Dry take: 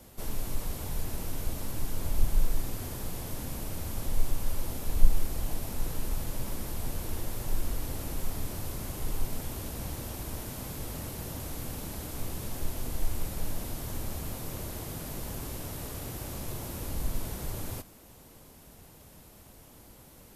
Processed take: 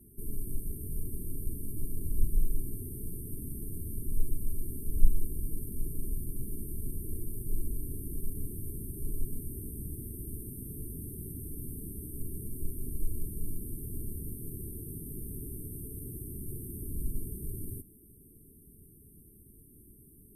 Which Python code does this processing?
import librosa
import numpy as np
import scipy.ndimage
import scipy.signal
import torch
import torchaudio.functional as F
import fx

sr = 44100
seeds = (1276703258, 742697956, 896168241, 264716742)

y = fx.brickwall_bandstop(x, sr, low_hz=450.0, high_hz=8300.0)
y = y * librosa.db_to_amplitude(-2.0)